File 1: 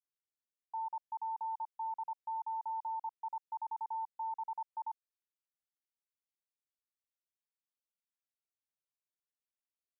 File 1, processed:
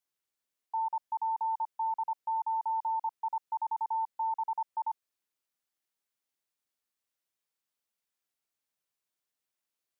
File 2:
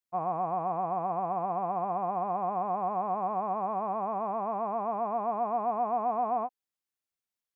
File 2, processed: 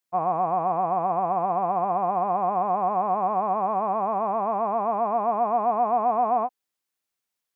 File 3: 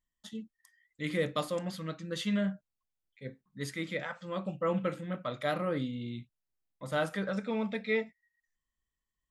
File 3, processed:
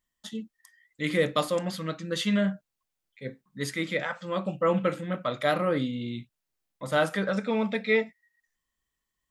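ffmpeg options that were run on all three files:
-af "lowshelf=f=120:g=-7.5,volume=2.24"

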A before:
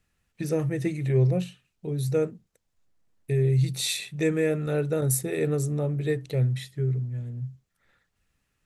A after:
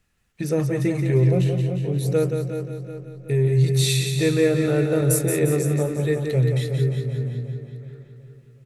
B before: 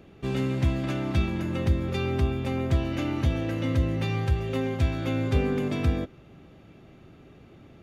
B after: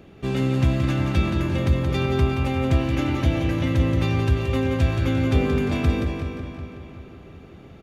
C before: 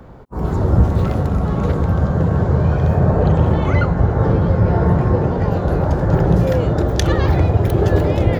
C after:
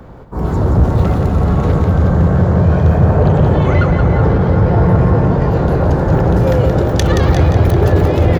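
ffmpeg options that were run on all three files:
-filter_complex "[0:a]asplit=2[s0][s1];[s1]adelay=372,lowpass=f=4200:p=1,volume=0.335,asplit=2[s2][s3];[s3]adelay=372,lowpass=f=4200:p=1,volume=0.51,asplit=2[s4][s5];[s5]adelay=372,lowpass=f=4200:p=1,volume=0.51,asplit=2[s6][s7];[s7]adelay=372,lowpass=f=4200:p=1,volume=0.51,asplit=2[s8][s9];[s9]adelay=372,lowpass=f=4200:p=1,volume=0.51,asplit=2[s10][s11];[s11]adelay=372,lowpass=f=4200:p=1,volume=0.51[s12];[s2][s4][s6][s8][s10][s12]amix=inputs=6:normalize=0[s13];[s0][s13]amix=inputs=2:normalize=0,acontrast=75,asplit=2[s14][s15];[s15]aecho=0:1:175|350|525|700|875|1050:0.473|0.232|0.114|0.0557|0.0273|0.0134[s16];[s14][s16]amix=inputs=2:normalize=0,volume=0.708"

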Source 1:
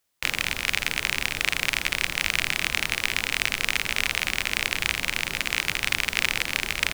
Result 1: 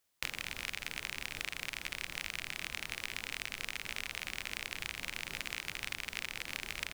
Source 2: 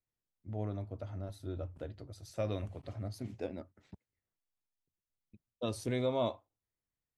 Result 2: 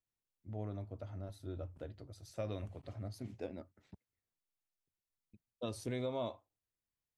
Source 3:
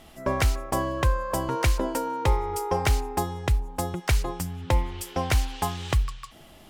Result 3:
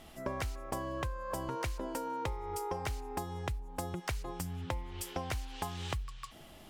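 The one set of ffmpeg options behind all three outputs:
-af "acompressor=threshold=0.0316:ratio=10,volume=0.668"

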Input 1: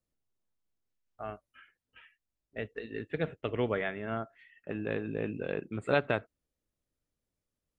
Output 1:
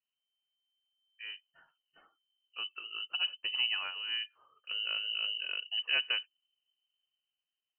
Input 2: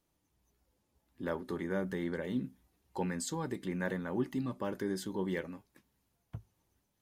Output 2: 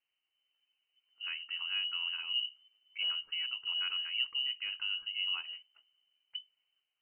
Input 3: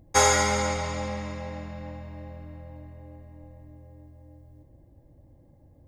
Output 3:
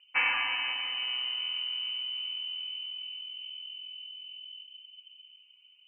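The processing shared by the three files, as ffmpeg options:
-filter_complex "[0:a]acrossover=split=210[s0][s1];[s0]dynaudnorm=f=240:g=9:m=3.98[s2];[s2][s1]amix=inputs=2:normalize=0,lowpass=f=2600:t=q:w=0.5098,lowpass=f=2600:t=q:w=0.6013,lowpass=f=2600:t=q:w=0.9,lowpass=f=2600:t=q:w=2.563,afreqshift=-3100,volume=0.473"

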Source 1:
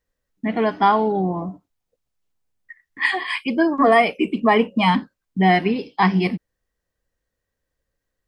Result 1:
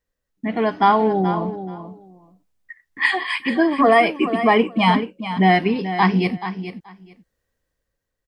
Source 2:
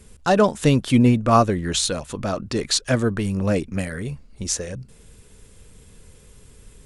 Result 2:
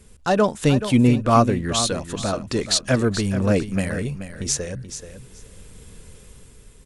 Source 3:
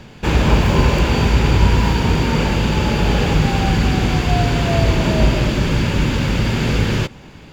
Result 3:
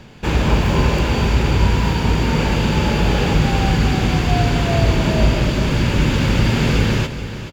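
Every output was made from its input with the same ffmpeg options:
-af "dynaudnorm=f=120:g=11:m=2,aecho=1:1:430|860:0.282|0.0451,volume=0.794"

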